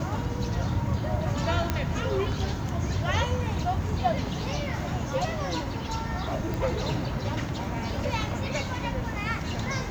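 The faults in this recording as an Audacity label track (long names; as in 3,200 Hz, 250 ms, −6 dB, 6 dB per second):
1.700000	1.700000	click −11 dBFS
6.540000	6.540000	click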